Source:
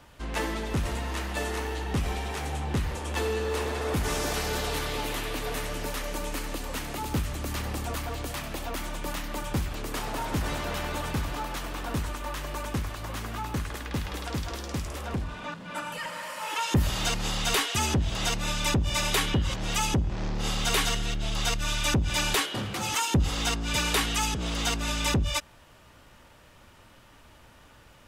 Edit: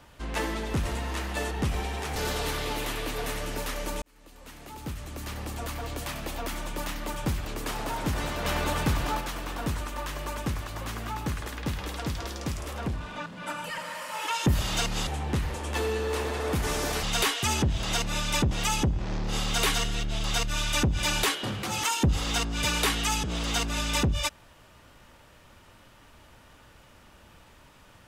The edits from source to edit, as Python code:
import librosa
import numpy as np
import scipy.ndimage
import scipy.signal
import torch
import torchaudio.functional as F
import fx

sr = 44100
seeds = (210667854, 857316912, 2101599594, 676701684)

y = fx.edit(x, sr, fx.cut(start_s=1.51, length_s=0.32),
    fx.move(start_s=2.48, length_s=1.96, to_s=17.35),
    fx.fade_in_span(start_s=6.3, length_s=2.11),
    fx.clip_gain(start_s=10.73, length_s=0.76, db=4.0),
    fx.cut(start_s=18.83, length_s=0.79), tone=tone)